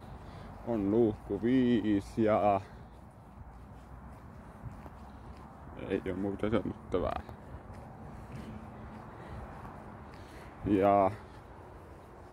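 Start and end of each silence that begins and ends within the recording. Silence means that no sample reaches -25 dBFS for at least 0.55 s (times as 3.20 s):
2.57–5.91 s
7.16–10.67 s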